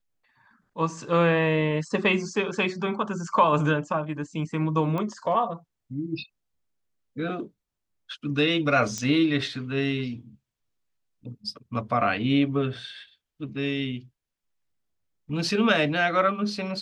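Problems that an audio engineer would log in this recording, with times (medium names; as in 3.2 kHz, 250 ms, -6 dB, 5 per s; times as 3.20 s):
4.98 s: pop -19 dBFS
8.98 s: pop -17 dBFS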